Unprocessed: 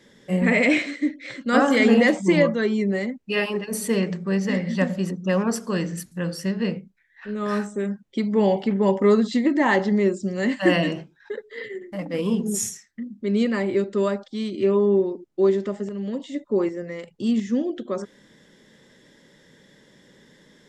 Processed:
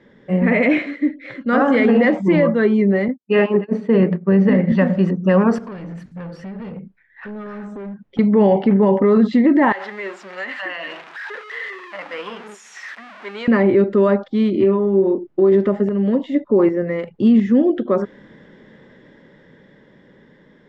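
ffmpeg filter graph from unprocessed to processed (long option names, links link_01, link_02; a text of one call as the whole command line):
ffmpeg -i in.wav -filter_complex "[0:a]asettb=1/sr,asplit=3[link_01][link_02][link_03];[link_01]atrim=end=3.084[link_04];[link_02]atrim=start=3.08:end=4.72,asetpts=PTS-STARTPTS,afade=type=in:duration=0.004:curve=qsin,afade=type=out:start_time=1.636:duration=0.004:curve=qsin,agate=range=-33dB:threshold=-24dB:ratio=3:release=100:detection=peak,highpass=210,lowpass=4100,lowshelf=frequency=420:gain=10[link_05];[link_03]atrim=start=4.716[link_06];[link_04][link_05]acrossfade=duration=0.004:curve1=hsin:curve2=qsin[link_07];[link_07][link_06]acrossfade=duration=0.004:curve1=qsin:curve2=hsin,asettb=1/sr,asplit=3[link_08][link_09][link_10];[link_08]atrim=end=5.584[link_11];[link_09]atrim=start=5.58:end=8.19,asetpts=PTS-STARTPTS,afade=type=in:duration=0.004:curve=qsin,afade=type=out:start_time=2.606:duration=0.004:curve=qsin,acompressor=threshold=-35dB:ratio=6:attack=3.2:release=140:knee=1:detection=peak,asoftclip=type=hard:threshold=-37.5dB,bandreject=frequency=340:width=9.4[link_12];[link_10]atrim=start=8.186[link_13];[link_11][link_12]acrossfade=duration=0.004:curve1=hsin:curve2=qsin[link_14];[link_14][link_13]acrossfade=duration=0.004:curve1=qsin:curve2=hsin,asettb=1/sr,asplit=3[link_15][link_16][link_17];[link_15]atrim=end=9.724[link_18];[link_16]atrim=start=9.72:end=13.48,asetpts=PTS-STARTPTS,afade=type=in:duration=0.004:curve=qsin,afade=type=out:start_time=3.756:duration=0.004:curve=qsin,aeval=exprs='val(0)+0.5*0.0266*sgn(val(0))':channel_layout=same,highpass=1200,acompressor=threshold=-30dB:ratio=10:attack=3.2:release=140:knee=1:detection=peak[link_19];[link_17]atrim=start=13.476[link_20];[link_18][link_19]acrossfade=duration=0.004:curve1=hsin:curve2=qsin[link_21];[link_21][link_20]acrossfade=duration=0.004:curve1=qsin:curve2=hsin,asettb=1/sr,asplit=3[link_22][link_23][link_24];[link_22]atrim=end=14.534[link_25];[link_23]atrim=start=14.53:end=15.52,asetpts=PTS-STARTPTS,afade=type=in:duration=0.004:curve=qsin,afade=type=out:start_time=0.986:duration=0.004:curve=qsin,acompressor=threshold=-23dB:ratio=10:attack=3.2:release=140:knee=1:detection=peak,asplit=2[link_26][link_27];[link_27]adelay=26,volume=-7dB[link_28];[link_26][link_28]amix=inputs=2:normalize=0,atrim=end_sample=43659[link_29];[link_24]atrim=start=15.516[link_30];[link_25][link_29]acrossfade=duration=0.004:curve1=hsin:curve2=qsin[link_31];[link_31][link_30]acrossfade=duration=0.004:curve1=qsin:curve2=hsin,lowpass=1900,dynaudnorm=framelen=550:gausssize=9:maxgain=7dB,alimiter=limit=-11dB:level=0:latency=1:release=28,volume=4.5dB" out.wav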